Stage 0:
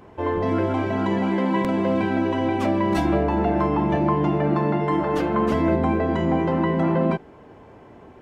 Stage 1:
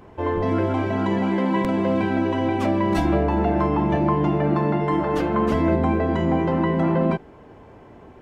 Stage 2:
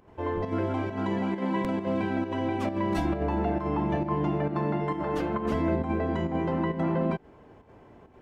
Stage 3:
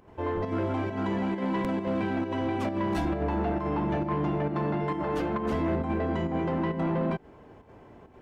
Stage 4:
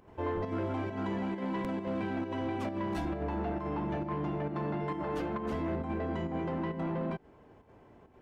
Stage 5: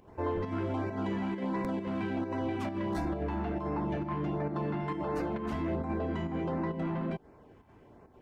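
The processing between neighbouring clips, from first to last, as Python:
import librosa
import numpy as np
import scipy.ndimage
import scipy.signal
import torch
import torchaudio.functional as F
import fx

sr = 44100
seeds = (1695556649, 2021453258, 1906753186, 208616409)

y1 = fx.low_shelf(x, sr, hz=63.0, db=7.0)
y2 = fx.volume_shaper(y1, sr, bpm=134, per_beat=1, depth_db=-8, release_ms=75.0, shape='slow start')
y2 = F.gain(torch.from_numpy(y2), -6.5).numpy()
y3 = 10.0 ** (-23.0 / 20.0) * np.tanh(y2 / 10.0 ** (-23.0 / 20.0))
y3 = F.gain(torch.from_numpy(y3), 1.5).numpy()
y4 = fx.rider(y3, sr, range_db=10, speed_s=0.5)
y4 = F.gain(torch.from_numpy(y4), -5.5).numpy()
y5 = fx.filter_lfo_notch(y4, sr, shape='sine', hz=1.4, low_hz=460.0, high_hz=3300.0, q=2.0)
y5 = F.gain(torch.from_numpy(y5), 1.5).numpy()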